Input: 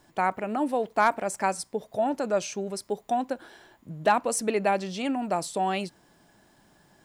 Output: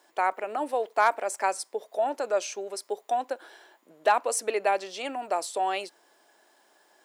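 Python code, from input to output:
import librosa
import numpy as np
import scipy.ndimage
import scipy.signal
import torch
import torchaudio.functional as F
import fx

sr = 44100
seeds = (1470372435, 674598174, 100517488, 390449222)

y = scipy.signal.sosfilt(scipy.signal.butter(4, 380.0, 'highpass', fs=sr, output='sos'), x)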